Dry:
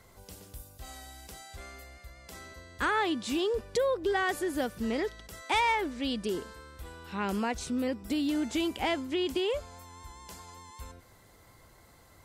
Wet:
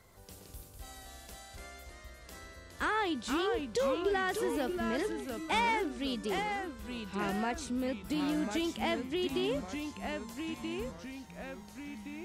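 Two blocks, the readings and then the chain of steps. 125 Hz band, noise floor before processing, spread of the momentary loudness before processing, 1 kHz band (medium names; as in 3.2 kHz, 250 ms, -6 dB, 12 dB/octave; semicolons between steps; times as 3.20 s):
-0.5 dB, -58 dBFS, 20 LU, -2.0 dB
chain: ever faster or slower copies 133 ms, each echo -2 st, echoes 3, each echo -6 dB; trim -3.5 dB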